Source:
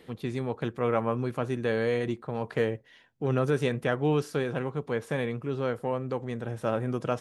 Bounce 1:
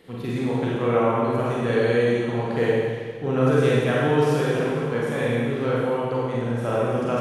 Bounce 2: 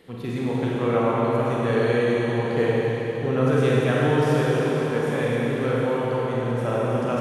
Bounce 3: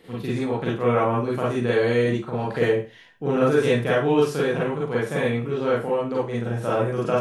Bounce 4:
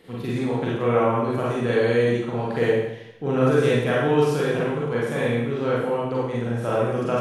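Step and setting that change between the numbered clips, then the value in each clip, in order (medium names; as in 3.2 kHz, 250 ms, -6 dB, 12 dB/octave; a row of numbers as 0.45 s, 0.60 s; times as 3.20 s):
Schroeder reverb, RT60: 1.8 s, 4.3 s, 0.31 s, 0.87 s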